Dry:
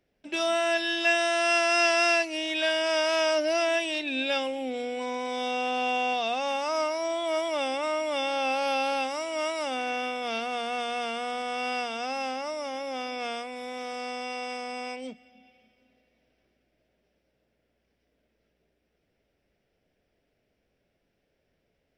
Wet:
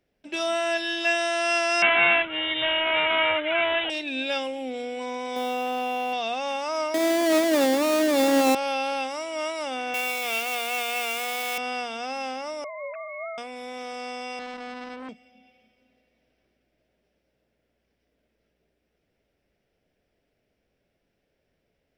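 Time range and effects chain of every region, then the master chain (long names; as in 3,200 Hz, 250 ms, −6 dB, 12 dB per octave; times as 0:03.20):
0:01.82–0:03.90: bass and treble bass −8 dB, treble +8 dB + comb filter 1 ms, depth 98% + bad sample-rate conversion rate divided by 6×, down none, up filtered
0:05.36–0:06.13: spike at every zero crossing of −32.5 dBFS + high-shelf EQ 2,900 Hz −10.5 dB + envelope flattener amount 100%
0:06.94–0:08.55: each half-wave held at its own peak + high-pass with resonance 270 Hz, resonance Q 3.1
0:09.94–0:11.58: spike at every zero crossing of −26.5 dBFS + high-pass filter 320 Hz + parametric band 2,400 Hz +10 dB 0.5 octaves
0:12.64–0:13.38: three sine waves on the formant tracks + high-pass filter 480 Hz + tilt shelving filter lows −5 dB, about 790 Hz
0:14.39–0:15.09: spectral tilt −3 dB per octave + saturating transformer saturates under 1,500 Hz
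whole clip: no processing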